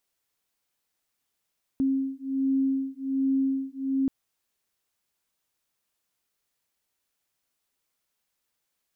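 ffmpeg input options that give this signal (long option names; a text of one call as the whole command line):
ffmpeg -f lavfi -i "aevalsrc='0.0473*(sin(2*PI*268*t)+sin(2*PI*269.3*t))':duration=2.28:sample_rate=44100" out.wav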